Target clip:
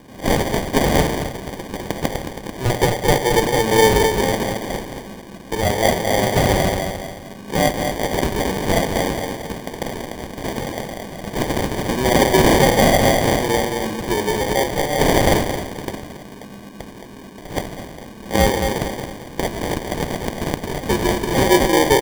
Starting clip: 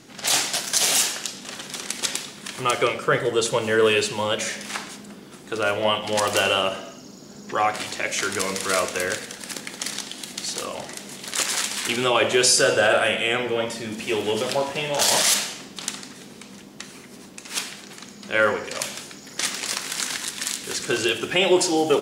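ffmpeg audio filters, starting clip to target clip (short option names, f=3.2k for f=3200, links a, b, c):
-filter_complex "[0:a]asplit=2[a][b];[b]adelay=220,lowpass=f=4.5k:p=1,volume=-5.5dB,asplit=2[c][d];[d]adelay=220,lowpass=f=4.5k:p=1,volume=0.41,asplit=2[e][f];[f]adelay=220,lowpass=f=4.5k:p=1,volume=0.41,asplit=2[g][h];[h]adelay=220,lowpass=f=4.5k:p=1,volume=0.41,asplit=2[i][j];[j]adelay=220,lowpass=f=4.5k:p=1,volume=0.41[k];[a][c][e][g][i][k]amix=inputs=6:normalize=0,acrusher=samples=33:mix=1:aa=0.000001,volume=4dB"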